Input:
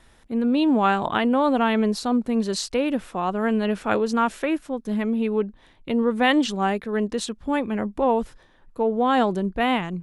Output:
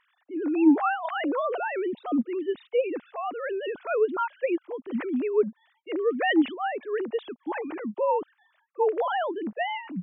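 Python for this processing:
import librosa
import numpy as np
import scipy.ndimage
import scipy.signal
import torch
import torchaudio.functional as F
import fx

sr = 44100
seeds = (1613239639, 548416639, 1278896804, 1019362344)

y = fx.sine_speech(x, sr)
y = y * librosa.db_to_amplitude(-4.5)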